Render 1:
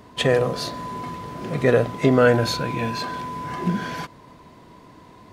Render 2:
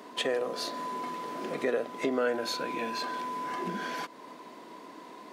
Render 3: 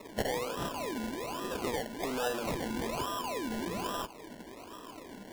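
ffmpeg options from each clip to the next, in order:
-af "highpass=f=250:w=0.5412,highpass=f=250:w=1.3066,acompressor=threshold=0.0126:ratio=2,volume=1.19"
-filter_complex "[0:a]acrossover=split=880|1500[s0][s1][s2];[s0]asoftclip=type=tanh:threshold=0.0224[s3];[s3][s1][s2]amix=inputs=3:normalize=0,acrusher=samples=28:mix=1:aa=0.000001:lfo=1:lforange=16.8:lforate=1.2"

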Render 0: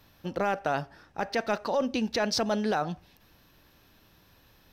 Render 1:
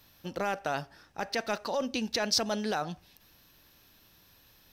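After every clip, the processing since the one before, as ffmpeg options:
-af "highshelf=f=3000:g=10,volume=0.596"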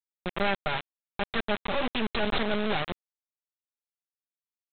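-af "aeval=exprs='if(lt(val(0),0),0.251*val(0),val(0))':c=same,aecho=1:1:5:0.91,aresample=8000,acrusher=bits=4:mix=0:aa=0.000001,aresample=44100,volume=1.33"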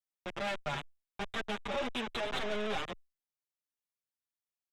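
-filter_complex "[0:a]acrossover=split=430[s0][s1];[s0]alimiter=level_in=2.24:limit=0.0631:level=0:latency=1,volume=0.447[s2];[s1]asoftclip=type=tanh:threshold=0.0422[s3];[s2][s3]amix=inputs=2:normalize=0,asplit=2[s4][s5];[s5]adelay=7.1,afreqshift=0.73[s6];[s4][s6]amix=inputs=2:normalize=1"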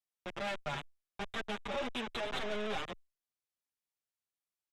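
-af "aresample=32000,aresample=44100,volume=0.794"

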